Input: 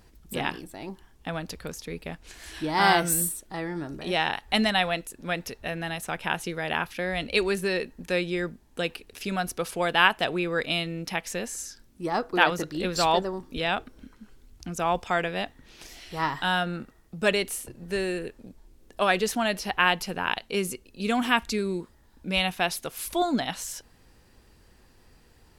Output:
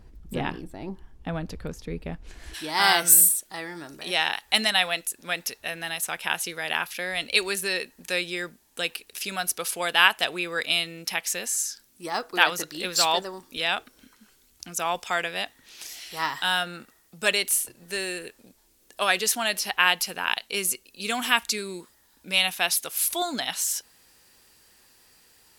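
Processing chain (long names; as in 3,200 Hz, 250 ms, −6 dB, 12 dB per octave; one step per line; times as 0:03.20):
spectral tilt −2 dB per octave, from 0:02.53 +3.5 dB per octave
level −1 dB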